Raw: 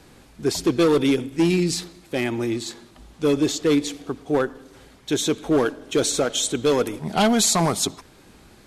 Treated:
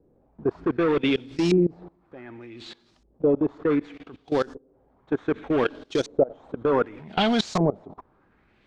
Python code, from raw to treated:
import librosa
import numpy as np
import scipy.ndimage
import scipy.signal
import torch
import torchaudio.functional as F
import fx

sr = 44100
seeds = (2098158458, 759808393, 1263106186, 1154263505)

y = fx.cvsd(x, sr, bps=64000)
y = fx.level_steps(y, sr, step_db=21)
y = fx.filter_lfo_lowpass(y, sr, shape='saw_up', hz=0.66, low_hz=430.0, high_hz=6200.0, q=2.1)